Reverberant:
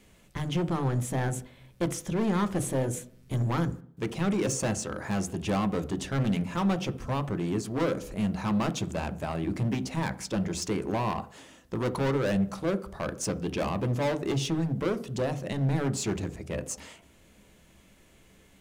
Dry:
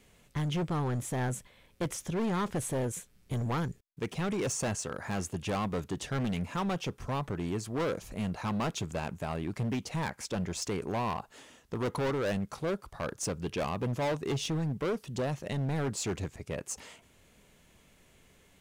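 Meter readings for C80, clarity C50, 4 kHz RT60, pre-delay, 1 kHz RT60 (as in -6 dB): 21.0 dB, 16.5 dB, 0.60 s, 3 ms, 0.55 s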